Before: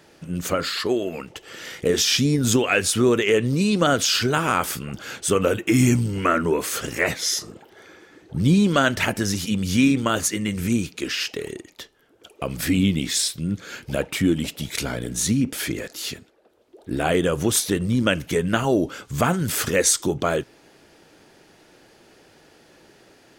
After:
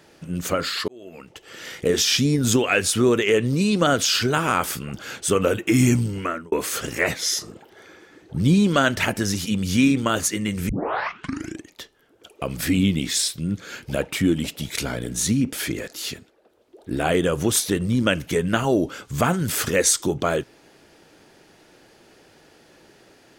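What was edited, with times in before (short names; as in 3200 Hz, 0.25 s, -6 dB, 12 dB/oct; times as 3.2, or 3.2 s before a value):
0.88–1.69 fade in
6.03–6.52 fade out
10.69 tape start 0.99 s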